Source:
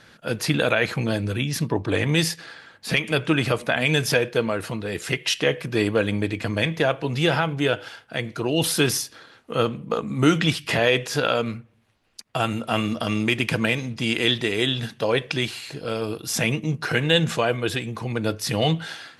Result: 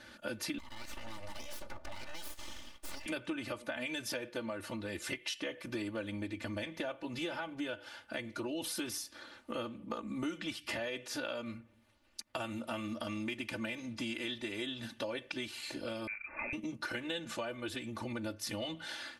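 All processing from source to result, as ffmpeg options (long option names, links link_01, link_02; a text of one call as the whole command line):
ffmpeg -i in.wav -filter_complex "[0:a]asettb=1/sr,asplit=3[link_01][link_02][link_03];[link_01]atrim=end=0.584[link_04];[link_02]atrim=start=0.58:end=3.06,asetpts=PTS-STARTPTS,afade=type=in:duration=0.004:curve=qsin,afade=type=out:start_time=2.476:duration=0.004:curve=qsin,highpass=frequency=270:width=0.5412,highpass=frequency=270:width=1.3066,acompressor=threshold=-34dB:ratio=8:attack=3.2:release=140:knee=1:detection=peak,aeval=exprs='abs(val(0))':channel_layout=same[link_05];[link_03]atrim=start=3.056[link_06];[link_04][link_05]acrossfade=duration=0.004:curve1=hsin:curve2=qsin[link_07];[link_07][link_06]acrossfade=duration=0.004:curve1=qsin:curve2=hsin,asettb=1/sr,asplit=3[link_08][link_09][link_10];[link_08]atrim=end=16.074[link_11];[link_09]atrim=start=16.07:end=16.53,asetpts=PTS-STARTPTS,afade=type=in:duration=0.004:curve=qsin,afade=type=out:start_time=0.456:duration=0.004:curve=qsin,highpass=frequency=150:width=0.5412,highpass=frequency=150:width=1.3066,volume=25dB,asoftclip=hard,volume=-25dB,lowpass=frequency=2300:width_type=q:width=0.5098,lowpass=frequency=2300:width_type=q:width=0.6013,lowpass=frequency=2300:width_type=q:width=0.9,lowpass=frequency=2300:width_type=q:width=2.563,afreqshift=-2700[link_12];[link_10]atrim=start=16.526[link_13];[link_11][link_12]acrossfade=duration=0.004:curve1=hsin:curve2=qsin[link_14];[link_14][link_13]acrossfade=duration=0.004:curve1=qsin:curve2=hsin,aecho=1:1:3.4:0.99,acompressor=threshold=-32dB:ratio=5,volume=-5.5dB" out.wav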